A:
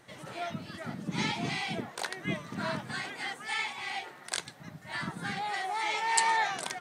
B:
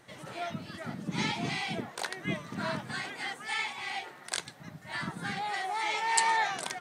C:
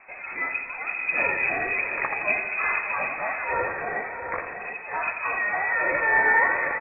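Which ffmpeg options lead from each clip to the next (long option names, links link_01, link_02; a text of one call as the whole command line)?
ffmpeg -i in.wav -af anull out.wav
ffmpeg -i in.wav -filter_complex "[0:a]asplit=2[link_01][link_02];[link_02]aecho=0:1:595|731:0.266|0.398[link_03];[link_01][link_03]amix=inputs=2:normalize=0,lowpass=frequency=2300:width_type=q:width=0.5098,lowpass=frequency=2300:width_type=q:width=0.6013,lowpass=frequency=2300:width_type=q:width=0.9,lowpass=frequency=2300:width_type=q:width=2.563,afreqshift=-2700,asplit=2[link_04][link_05];[link_05]aecho=0:1:85|170|255|340|425|510|595:0.355|0.213|0.128|0.0766|0.046|0.0276|0.0166[link_06];[link_04][link_06]amix=inputs=2:normalize=0,volume=8dB" out.wav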